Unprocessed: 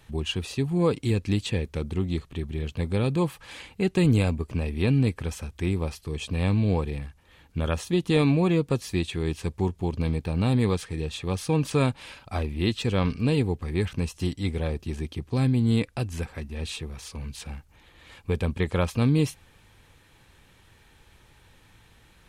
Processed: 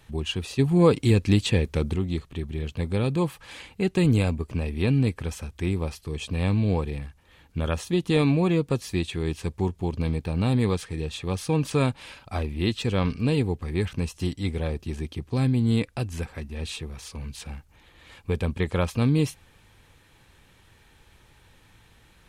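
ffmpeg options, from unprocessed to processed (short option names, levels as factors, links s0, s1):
-filter_complex "[0:a]asplit=3[s0][s1][s2];[s0]atrim=end=0.592[s3];[s1]atrim=start=0.588:end=1.962,asetpts=PTS-STARTPTS,volume=1.78[s4];[s2]atrim=start=1.958[s5];[s3][s4]acrossfade=d=0.004:c1=hsin:c2=hsin[s6];[s6][s5]acrossfade=d=0.004:c1=hsin:c2=hsin"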